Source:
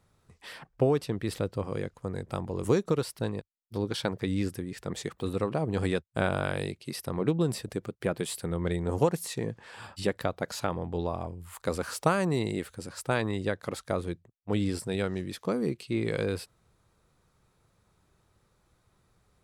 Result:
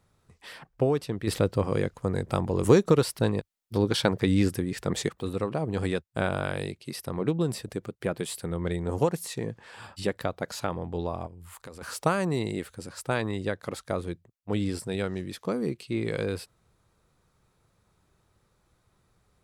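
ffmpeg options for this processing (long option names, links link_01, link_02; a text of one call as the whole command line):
ffmpeg -i in.wav -filter_complex "[0:a]asettb=1/sr,asplit=3[link_01][link_02][link_03];[link_01]atrim=end=1.274[link_04];[link_02]atrim=start=1.27:end=5.09,asetpts=PTS-STARTPTS,afade=type=in:duration=0.004:curve=qsin,afade=type=out:start_time=3.816:duration=0.004:curve=qsin,acontrast=69[link_05];[link_03]atrim=start=5.086[link_06];[link_04][link_05]acrossfade=duration=0.004:curve1=hsin:curve2=qsin[link_07];[link_07][link_06]acrossfade=duration=0.004:curve1=qsin:curve2=hsin,asplit=3[link_08][link_09][link_10];[link_08]afade=type=out:start_time=11.26:duration=0.02[link_11];[link_09]acompressor=threshold=-42dB:ratio=4:attack=3.2:release=140:knee=1:detection=peak,afade=type=in:start_time=11.26:duration=0.02,afade=type=out:start_time=11.81:duration=0.02[link_12];[link_10]afade=type=in:start_time=11.81:duration=0.02[link_13];[link_11][link_12][link_13]amix=inputs=3:normalize=0" out.wav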